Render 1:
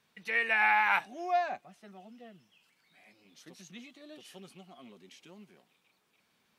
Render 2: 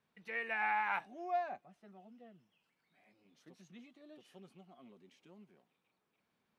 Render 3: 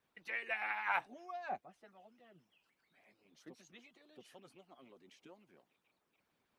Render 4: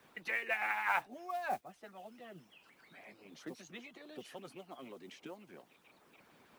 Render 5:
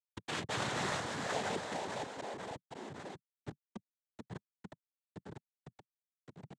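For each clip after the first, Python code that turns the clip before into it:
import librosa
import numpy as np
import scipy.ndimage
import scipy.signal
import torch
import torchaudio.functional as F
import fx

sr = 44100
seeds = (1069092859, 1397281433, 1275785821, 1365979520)

y1 = fx.high_shelf(x, sr, hz=2200.0, db=-11.5)
y1 = y1 * librosa.db_to_amplitude(-5.5)
y2 = fx.hpss(y1, sr, part='harmonic', gain_db=-17)
y2 = y2 * librosa.db_to_amplitude(6.0)
y3 = fx.mod_noise(y2, sr, seeds[0], snr_db=24)
y3 = fx.band_squash(y3, sr, depth_pct=40)
y3 = y3 * librosa.db_to_amplitude(6.0)
y4 = fx.schmitt(y3, sr, flips_db=-38.0)
y4 = fx.echo_pitch(y4, sr, ms=177, semitones=-3, count=3, db_per_echo=-3.0)
y4 = fx.noise_vocoder(y4, sr, seeds[1], bands=6)
y4 = y4 * librosa.db_to_amplitude(6.5)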